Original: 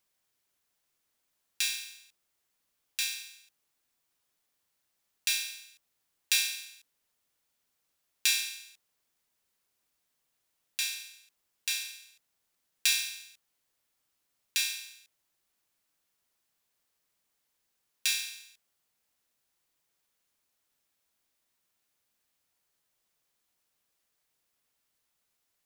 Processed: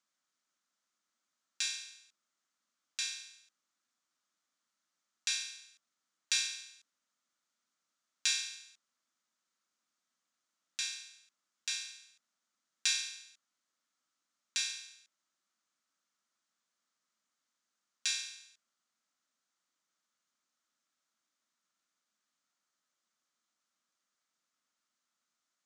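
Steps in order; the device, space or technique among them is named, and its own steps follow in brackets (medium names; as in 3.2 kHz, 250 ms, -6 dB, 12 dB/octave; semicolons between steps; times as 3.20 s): television speaker (cabinet simulation 180–7800 Hz, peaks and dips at 230 Hz +4 dB, 430 Hz -10 dB, 810 Hz -4 dB, 1.3 kHz +8 dB, 2.6 kHz -4 dB, 6.5 kHz +4 dB); trim -4 dB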